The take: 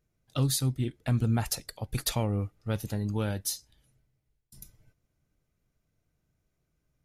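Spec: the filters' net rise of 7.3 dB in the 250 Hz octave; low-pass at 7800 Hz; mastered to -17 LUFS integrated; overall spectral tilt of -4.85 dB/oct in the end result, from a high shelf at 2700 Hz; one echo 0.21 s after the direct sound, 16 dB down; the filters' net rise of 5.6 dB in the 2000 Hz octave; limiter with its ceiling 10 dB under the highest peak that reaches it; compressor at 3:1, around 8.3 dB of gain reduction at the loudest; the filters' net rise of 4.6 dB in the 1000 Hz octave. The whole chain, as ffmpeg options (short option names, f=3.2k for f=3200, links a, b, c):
-af "lowpass=7.8k,equalizer=f=250:t=o:g=8.5,equalizer=f=1k:t=o:g=4,equalizer=f=2k:t=o:g=4.5,highshelf=f=2.7k:g=3.5,acompressor=threshold=-29dB:ratio=3,alimiter=level_in=2.5dB:limit=-24dB:level=0:latency=1,volume=-2.5dB,aecho=1:1:210:0.158,volume=20dB"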